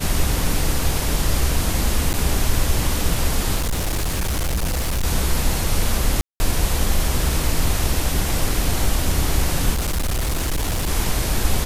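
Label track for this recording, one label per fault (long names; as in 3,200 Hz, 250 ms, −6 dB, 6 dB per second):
2.130000	2.140000	drop-out 9.4 ms
3.560000	5.050000	clipping −18 dBFS
6.210000	6.400000	drop-out 190 ms
9.730000	10.900000	clipping −18 dBFS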